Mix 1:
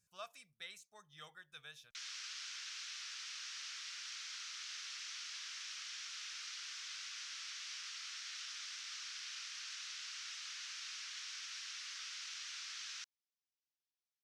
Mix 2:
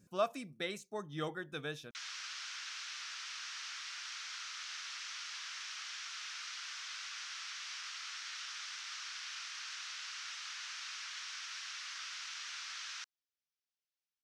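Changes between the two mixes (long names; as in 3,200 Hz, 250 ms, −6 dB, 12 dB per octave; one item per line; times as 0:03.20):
speech +5.0 dB
master: remove guitar amp tone stack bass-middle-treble 10-0-10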